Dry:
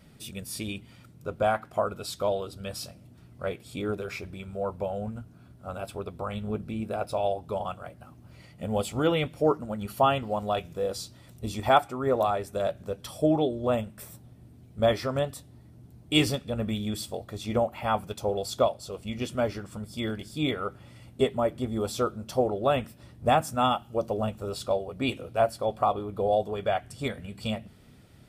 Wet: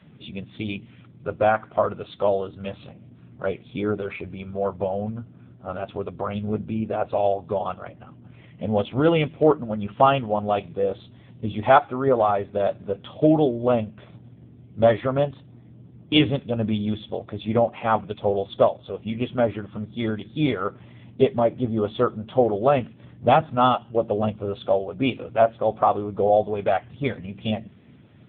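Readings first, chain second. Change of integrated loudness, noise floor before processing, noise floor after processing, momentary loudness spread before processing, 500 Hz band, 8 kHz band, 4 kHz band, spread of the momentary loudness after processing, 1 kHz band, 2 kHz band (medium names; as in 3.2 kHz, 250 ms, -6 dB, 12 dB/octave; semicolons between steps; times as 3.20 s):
+5.5 dB, -53 dBFS, -49 dBFS, 14 LU, +6.0 dB, under -35 dB, +1.0 dB, 14 LU, +5.5 dB, +4.0 dB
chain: trim +6.5 dB; AMR-NB 6.7 kbps 8 kHz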